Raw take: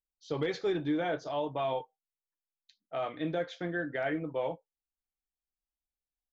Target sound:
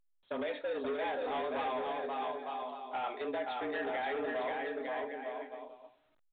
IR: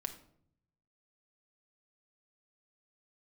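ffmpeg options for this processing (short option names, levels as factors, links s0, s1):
-filter_complex "[0:a]acompressor=threshold=0.0282:ratio=6,lowshelf=f=270:g=3.5,afreqshift=120,aecho=1:1:530|901|1161|1342|1470:0.631|0.398|0.251|0.158|0.1,asoftclip=type=tanh:threshold=0.0224,bandreject=f=47.51:t=h:w=4,bandreject=f=95.02:t=h:w=4,bandreject=f=142.53:t=h:w=4,bandreject=f=190.04:t=h:w=4,bandreject=f=237.55:t=h:w=4,bandreject=f=285.06:t=h:w=4,bandreject=f=332.57:t=h:w=4,bandreject=f=380.08:t=h:w=4,bandreject=f=427.59:t=h:w=4,bandreject=f=475.1:t=h:w=4,bandreject=f=522.61:t=h:w=4,bandreject=f=570.12:t=h:w=4,bandreject=f=617.63:t=h:w=4,bandreject=f=665.14:t=h:w=4,bandreject=f=712.65:t=h:w=4,bandreject=f=760.16:t=h:w=4,bandreject=f=807.67:t=h:w=4,agate=range=0.0224:threshold=0.00794:ratio=3:detection=peak,lowshelf=f=97:g=-12,asplit=2[s0][s1];[1:a]atrim=start_sample=2205,lowshelf=f=330:g=-7.5[s2];[s1][s2]afir=irnorm=-1:irlink=0,volume=0.237[s3];[s0][s3]amix=inputs=2:normalize=0,volume=1.19" -ar 8000 -c:a pcm_alaw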